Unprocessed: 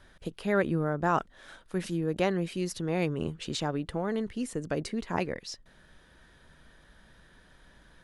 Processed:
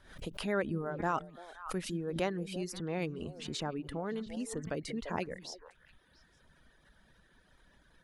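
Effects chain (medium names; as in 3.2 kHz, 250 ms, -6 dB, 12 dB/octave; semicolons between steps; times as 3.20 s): reverb removal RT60 0.98 s; repeats whose band climbs or falls 171 ms, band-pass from 200 Hz, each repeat 1.4 oct, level -10 dB; swell ahead of each attack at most 100 dB/s; trim -5.5 dB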